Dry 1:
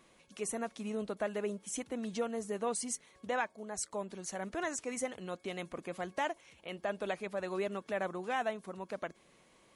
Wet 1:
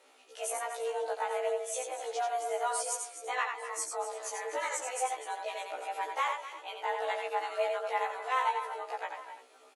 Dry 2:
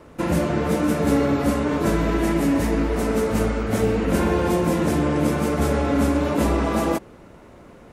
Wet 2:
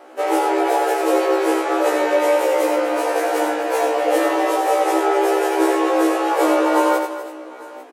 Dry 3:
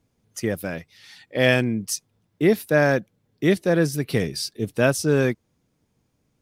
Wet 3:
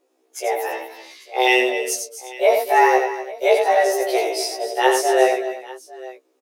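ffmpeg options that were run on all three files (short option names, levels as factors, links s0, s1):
-filter_complex "[0:a]afreqshift=250,asplit=2[s0][s1];[s1]aecho=0:1:88|247|250|338|848:0.531|0.133|0.211|0.119|0.106[s2];[s0][s2]amix=inputs=2:normalize=0,afftfilt=real='re*1.73*eq(mod(b,3),0)':imag='im*1.73*eq(mod(b,3),0)':win_size=2048:overlap=0.75,volume=1.68"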